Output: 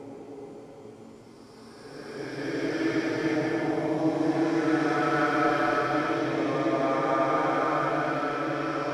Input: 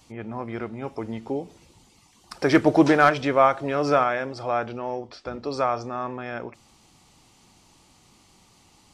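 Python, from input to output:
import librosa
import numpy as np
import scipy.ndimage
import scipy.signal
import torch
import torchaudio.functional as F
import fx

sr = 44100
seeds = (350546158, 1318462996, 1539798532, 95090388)

p1 = x + fx.echo_diffused(x, sr, ms=541, feedback_pct=48, wet_db=-3.5, dry=0)
p2 = fx.paulstretch(p1, sr, seeds[0], factor=4.7, window_s=0.5, from_s=1.88)
y = p2 * librosa.db_to_amplitude(-8.5)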